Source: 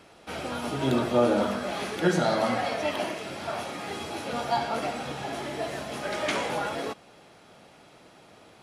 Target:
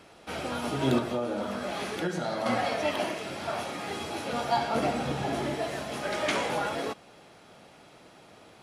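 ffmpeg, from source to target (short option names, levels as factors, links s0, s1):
-filter_complex "[0:a]asettb=1/sr,asplit=3[s0][s1][s2];[s0]atrim=end=0.984[s3];[s1]atrim=start=0.98:end=2.46,asetpts=PTS-STARTPTS,afade=t=in:d=0.004:c=qsin,afade=t=out:st=1.476:d=0.004:c=qsin,acompressor=threshold=0.0355:ratio=4[s4];[s2]atrim=start=2.456[s5];[s3][s4]acrossfade=d=0.004:c1=hsin:c2=qsin[s6];[s6][s5]acrossfade=d=0.004:c1=qsin:c2=hsin,asettb=1/sr,asplit=3[s7][s8][s9];[s7]atrim=end=4.754[s10];[s8]atrim=start=4.75:end=5.55,asetpts=PTS-STARTPTS,afade=t=in:d=0.004:c=qsin,afade=t=out:st=0.796:d=0.004:c=qsin,lowshelf=f=490:g=7.5[s11];[s9]atrim=start=5.546[s12];[s10][s11]acrossfade=d=0.004:c1=hsin:c2=qsin[s13];[s13][s12]acrossfade=d=0.004:c1=qsin:c2=hsin"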